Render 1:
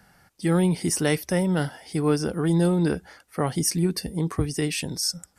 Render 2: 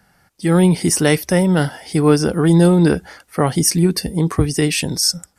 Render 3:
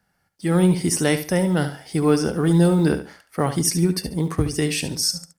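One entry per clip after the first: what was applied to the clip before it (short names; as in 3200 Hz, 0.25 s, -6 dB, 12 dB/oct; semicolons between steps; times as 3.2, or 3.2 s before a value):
AGC gain up to 12 dB
G.711 law mismatch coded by A; on a send: feedback echo 71 ms, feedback 25%, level -11 dB; on the sum: gain -5 dB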